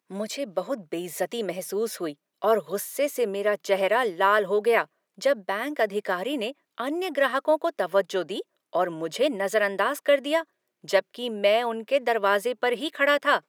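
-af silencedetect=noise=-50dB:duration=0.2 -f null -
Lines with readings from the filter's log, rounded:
silence_start: 2.14
silence_end: 2.42 | silence_duration: 0.28
silence_start: 4.86
silence_end: 5.18 | silence_duration: 0.32
silence_start: 6.52
silence_end: 6.78 | silence_duration: 0.26
silence_start: 8.42
silence_end: 8.73 | silence_duration: 0.31
silence_start: 10.44
silence_end: 10.84 | silence_duration: 0.40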